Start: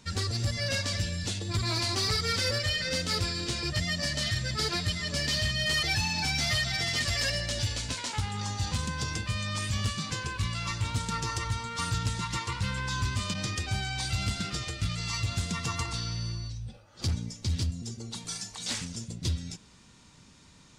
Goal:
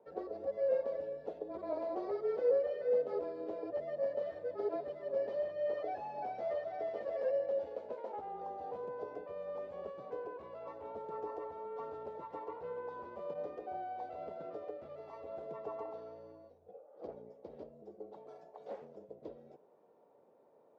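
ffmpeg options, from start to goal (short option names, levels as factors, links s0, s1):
-af "afreqshift=-27,asuperpass=centerf=540:order=4:qfactor=2,volume=2.24"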